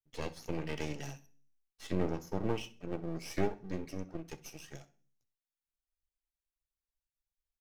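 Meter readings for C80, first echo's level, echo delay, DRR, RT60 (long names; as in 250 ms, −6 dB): 23.0 dB, −20.5 dB, 65 ms, 8.0 dB, 0.40 s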